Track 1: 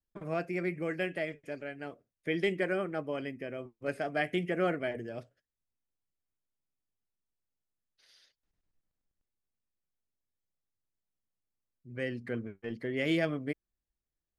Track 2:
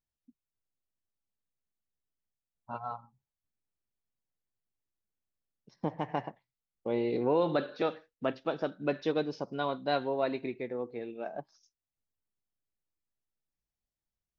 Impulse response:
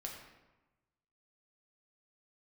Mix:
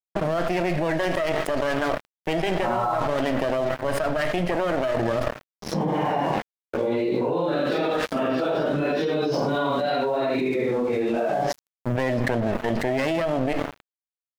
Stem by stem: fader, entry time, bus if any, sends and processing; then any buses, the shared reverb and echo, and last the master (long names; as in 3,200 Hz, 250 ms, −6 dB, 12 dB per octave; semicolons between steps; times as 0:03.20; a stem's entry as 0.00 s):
−3.5 dB, 0.00 s, send −9.5 dB, lower of the sound and its delayed copy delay 0.6 ms; parametric band 630 Hz +15 dB 0.36 octaves; downward compressor 8 to 1, threshold −30 dBFS, peak gain reduction 8 dB; automatic ducking −8 dB, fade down 1.10 s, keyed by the second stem
+2.5 dB, 0.00 s, no send, random phases in long frames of 200 ms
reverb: on, RT60 1.1 s, pre-delay 6 ms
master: tuned comb filter 65 Hz, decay 0.22 s, harmonics all, mix 30%; dead-zone distortion −58.5 dBFS; envelope flattener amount 100%